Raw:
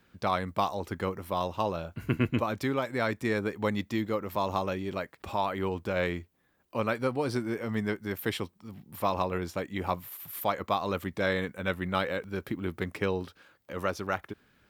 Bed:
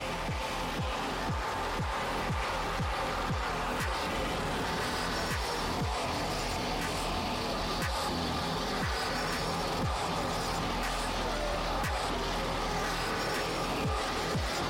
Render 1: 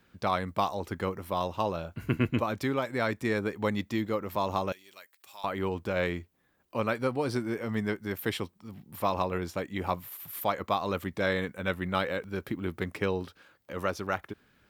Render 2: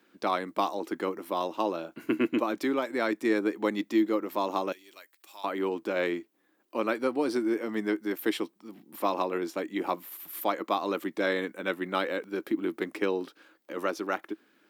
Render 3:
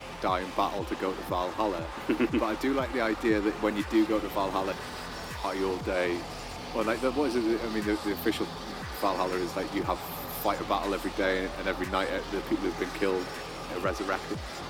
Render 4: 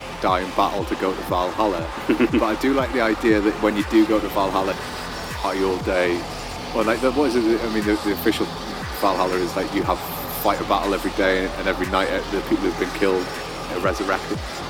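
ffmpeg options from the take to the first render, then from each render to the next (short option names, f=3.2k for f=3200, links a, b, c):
-filter_complex "[0:a]asettb=1/sr,asplit=3[a][b][c];[a]atrim=end=4.724[d];[b]atrim=start=4.72:end=5.44,asetpts=PTS-STARTPTS,afade=t=in:d=0.004:c=qsin,afade=t=out:st=0.716:d=0.004:c=qsin,aderivative[e];[c]atrim=start=5.436[f];[d][e]acrossfade=d=0.004:c1=hsin:c2=qsin[g];[g][f]acrossfade=d=0.004:c1=qsin:c2=hsin"
-af "highpass=f=230:w=0.5412,highpass=f=230:w=1.3066,equalizer=f=320:t=o:w=0.34:g=10.5"
-filter_complex "[1:a]volume=-6dB[a];[0:a][a]amix=inputs=2:normalize=0"
-af "volume=8.5dB"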